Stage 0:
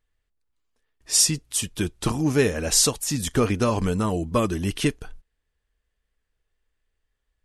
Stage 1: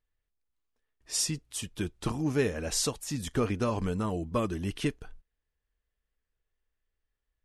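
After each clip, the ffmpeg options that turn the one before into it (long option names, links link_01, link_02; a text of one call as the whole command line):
ffmpeg -i in.wav -af "highshelf=frequency=4900:gain=-6.5,volume=-7dB" out.wav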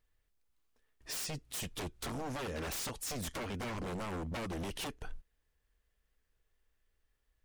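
ffmpeg -i in.wav -af "acompressor=threshold=-36dB:ratio=6,aeval=exprs='0.0106*(abs(mod(val(0)/0.0106+3,4)-2)-1)':channel_layout=same,volume=5.5dB" out.wav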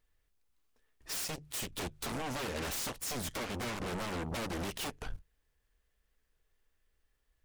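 ffmpeg -i in.wav -af "bandreject=frequency=50:width_type=h:width=6,bandreject=frequency=100:width_type=h:width=6,bandreject=frequency=150:width_type=h:width=6,aeval=exprs='0.0266*(cos(1*acos(clip(val(0)/0.0266,-1,1)))-cos(1*PI/2))+0.00841*(cos(7*acos(clip(val(0)/0.0266,-1,1)))-cos(7*PI/2))':channel_layout=same" out.wav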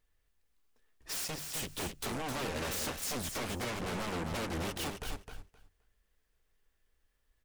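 ffmpeg -i in.wav -af "aecho=1:1:261|522|783:0.501|0.0852|0.0145" out.wav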